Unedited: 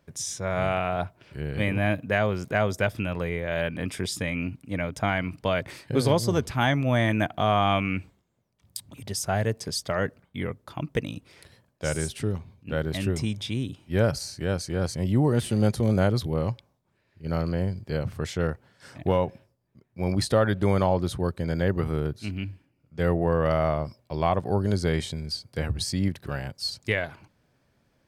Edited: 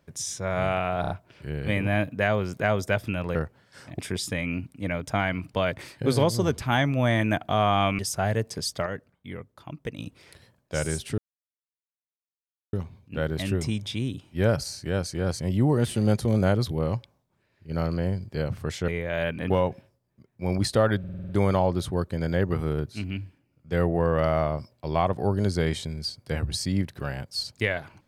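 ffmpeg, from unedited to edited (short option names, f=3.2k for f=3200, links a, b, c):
-filter_complex "[0:a]asplit=18[a][b][c][d][e][f][g][h][i][j][k][l][m][n][o][p][q][r];[a]atrim=end=1.042[s];[b]atrim=start=1.008:end=1.042[t];[c]atrim=start=1.008:end=1.042[u];[d]atrim=start=1.008:end=3.262[v];[e]atrim=start=18.428:end=19.072[w];[f]atrim=start=3.878:end=7.882[x];[g]atrim=start=9.088:end=9.962[y];[h]atrim=start=9.958:end=11.092,asetpts=PTS-STARTPTS,volume=-7dB[z];[i]atrim=start=11.088:end=12.28,asetpts=PTS-STARTPTS,afade=t=out:st=1.188:d=0.004:c=hsin,apad=pad_dur=1.55[aa];[j]atrim=start=12.28:end=18.432,asetpts=PTS-STARTPTS,afade=t=in:d=0.004:c=hsin[ab];[k]atrim=start=3.258:end=3.882[ac];[l]atrim=start=19.068:end=20.612[ad];[m]atrim=start=20.558:end=20.612[ae];[n]atrim=start=20.558:end=20.612[af];[o]atrim=start=20.558:end=20.612[ag];[p]atrim=start=20.558:end=20.612[ah];[q]atrim=start=20.558:end=20.612[ai];[r]atrim=start=20.558[aj];[s][t]acrossfade=d=0.004:c1=hsin:c2=hsin[ak];[ak][u]acrossfade=d=0.004:c1=hsin:c2=hsin[al];[al][v]acrossfade=d=0.004:c1=hsin:c2=hsin[am];[am][w]acrossfade=d=0.004:c1=hsin:c2=hsin[an];[an][x]acrossfade=d=0.004:c1=hsin:c2=hsin[ao];[ao][y]acrossfade=d=0.004:c1=hsin:c2=hsin[ap];[ap][z]acrossfade=d=0.004:c1=hsin:c2=hsin[aq];[aa][ab]concat=n=2:v=0:a=1[ar];[aq][ar]acrossfade=d=0.004:c1=hsin:c2=hsin[as];[as][ac]acrossfade=d=0.004:c1=hsin:c2=hsin[at];[at][ad]acrossfade=d=0.004:c1=hsin:c2=hsin[au];[au][ae]acrossfade=d=0.004:c1=hsin:c2=hsin[av];[av][af]acrossfade=d=0.004:c1=hsin:c2=hsin[aw];[aw][ag]acrossfade=d=0.004:c1=hsin:c2=hsin[ax];[ax][ah]acrossfade=d=0.004:c1=hsin:c2=hsin[ay];[ay][ai]acrossfade=d=0.004:c1=hsin:c2=hsin[az];[az][aj]acrossfade=d=0.004:c1=hsin:c2=hsin"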